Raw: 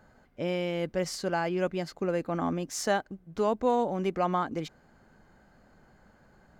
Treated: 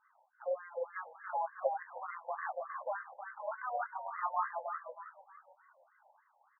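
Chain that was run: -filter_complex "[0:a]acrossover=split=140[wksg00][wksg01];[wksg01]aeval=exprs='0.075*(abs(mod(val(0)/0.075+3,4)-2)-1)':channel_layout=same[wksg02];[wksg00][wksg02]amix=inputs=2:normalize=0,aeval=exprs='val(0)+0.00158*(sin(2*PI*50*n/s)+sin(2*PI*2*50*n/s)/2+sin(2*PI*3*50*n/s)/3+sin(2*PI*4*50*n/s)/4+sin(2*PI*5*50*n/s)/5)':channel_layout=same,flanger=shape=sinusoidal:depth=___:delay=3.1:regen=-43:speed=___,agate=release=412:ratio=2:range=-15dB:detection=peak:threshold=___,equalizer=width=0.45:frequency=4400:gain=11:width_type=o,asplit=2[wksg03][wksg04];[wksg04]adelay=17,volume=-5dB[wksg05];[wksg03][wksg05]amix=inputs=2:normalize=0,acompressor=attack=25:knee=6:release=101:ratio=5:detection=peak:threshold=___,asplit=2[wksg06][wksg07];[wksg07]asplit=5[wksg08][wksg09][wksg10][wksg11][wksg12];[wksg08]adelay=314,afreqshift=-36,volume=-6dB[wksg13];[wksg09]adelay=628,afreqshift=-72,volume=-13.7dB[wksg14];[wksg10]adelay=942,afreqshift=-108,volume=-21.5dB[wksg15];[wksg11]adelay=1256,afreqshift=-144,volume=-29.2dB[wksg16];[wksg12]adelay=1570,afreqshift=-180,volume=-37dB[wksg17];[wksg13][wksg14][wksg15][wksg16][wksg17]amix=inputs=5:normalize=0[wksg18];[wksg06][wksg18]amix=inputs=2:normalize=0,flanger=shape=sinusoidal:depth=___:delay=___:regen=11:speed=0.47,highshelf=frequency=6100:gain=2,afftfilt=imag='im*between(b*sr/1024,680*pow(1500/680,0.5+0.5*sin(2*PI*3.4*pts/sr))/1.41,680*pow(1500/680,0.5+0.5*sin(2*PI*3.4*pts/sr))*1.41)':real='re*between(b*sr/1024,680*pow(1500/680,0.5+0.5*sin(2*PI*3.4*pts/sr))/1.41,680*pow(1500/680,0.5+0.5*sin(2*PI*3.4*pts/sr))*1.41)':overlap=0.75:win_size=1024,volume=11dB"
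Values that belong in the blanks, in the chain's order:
6.6, 1.5, -48dB, -37dB, 1.5, 0.9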